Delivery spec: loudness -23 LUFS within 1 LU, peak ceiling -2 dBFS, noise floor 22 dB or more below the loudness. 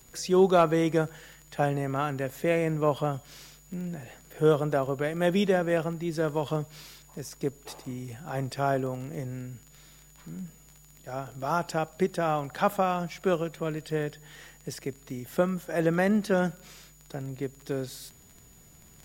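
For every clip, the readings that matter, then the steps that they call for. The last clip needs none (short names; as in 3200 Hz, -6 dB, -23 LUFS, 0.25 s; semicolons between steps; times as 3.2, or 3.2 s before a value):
ticks 22/s; steady tone 6900 Hz; tone level -58 dBFS; loudness -28.5 LUFS; peak -10.0 dBFS; loudness target -23.0 LUFS
-> de-click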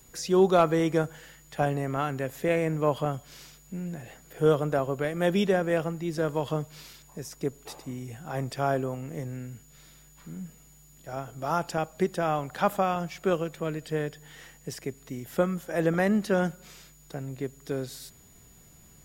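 ticks 0/s; steady tone 6900 Hz; tone level -58 dBFS
-> notch 6900 Hz, Q 30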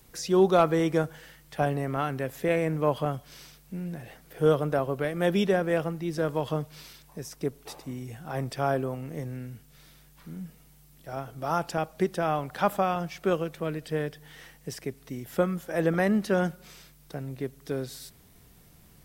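steady tone none; loudness -28.5 LUFS; peak -10.0 dBFS; loudness target -23.0 LUFS
-> gain +5.5 dB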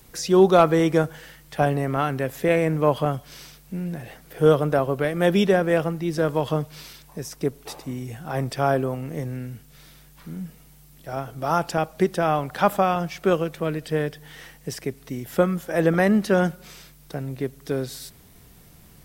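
loudness -23.0 LUFS; peak -4.5 dBFS; noise floor -51 dBFS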